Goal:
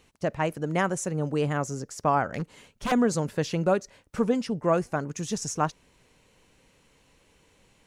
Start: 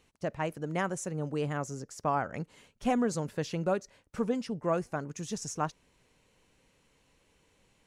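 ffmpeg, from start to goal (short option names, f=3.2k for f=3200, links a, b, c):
-filter_complex "[0:a]asettb=1/sr,asplit=3[a][b][c];[a]atrim=end=2.264[d];[b]atrim=start=2.26:end=2.92,asetpts=PTS-STARTPTS,afade=t=in:d=0.004:c=qsin,afade=t=out:st=0.656:d=0.004:c=qsin,aeval=exprs='0.0398*(abs(mod(val(0)/0.0398+3,4)-2)-1)':c=same[e];[c]atrim=start=2.916[f];[d][e]acrossfade=d=0.004:c1=hsin:c2=qsin[g];[g][f]acrossfade=d=0.004:c1=qsin:c2=hsin,volume=6dB"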